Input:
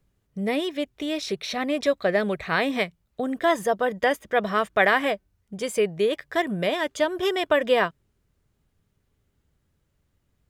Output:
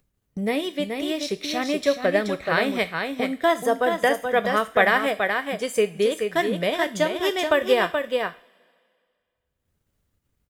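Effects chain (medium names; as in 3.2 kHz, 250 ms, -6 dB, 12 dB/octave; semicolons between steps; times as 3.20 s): treble shelf 11 kHz +6.5 dB; delay 427 ms -5 dB; transient shaper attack +2 dB, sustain -5 dB; gate -42 dBFS, range -56 dB; upward compressor, threshold -33 dBFS; on a send at -15 dB: treble shelf 2.3 kHz +11 dB + reverberation, pre-delay 3 ms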